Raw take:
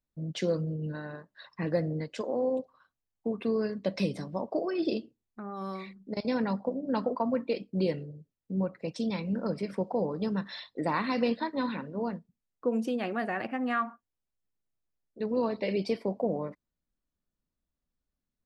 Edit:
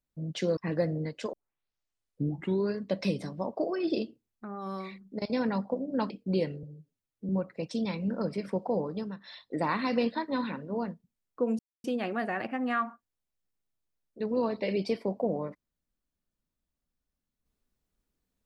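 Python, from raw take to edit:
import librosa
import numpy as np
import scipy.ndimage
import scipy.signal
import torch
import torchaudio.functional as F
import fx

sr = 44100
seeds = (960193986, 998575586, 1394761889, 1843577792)

y = fx.edit(x, sr, fx.cut(start_s=0.57, length_s=0.95),
    fx.tape_start(start_s=2.28, length_s=1.42),
    fx.cut(start_s=7.05, length_s=0.52),
    fx.stretch_span(start_s=8.1, length_s=0.44, factor=1.5),
    fx.fade_down_up(start_s=10.07, length_s=0.73, db=-10.5, fade_s=0.34),
    fx.insert_silence(at_s=12.84, length_s=0.25), tone=tone)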